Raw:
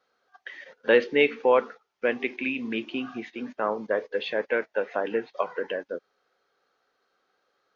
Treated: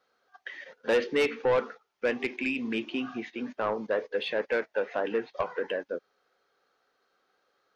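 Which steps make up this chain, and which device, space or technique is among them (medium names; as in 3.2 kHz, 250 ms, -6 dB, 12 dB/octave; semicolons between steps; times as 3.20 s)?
saturation between pre-emphasis and de-emphasis (treble shelf 4.4 kHz +6.5 dB; saturation -19 dBFS, distortion -10 dB; treble shelf 4.4 kHz -6.5 dB)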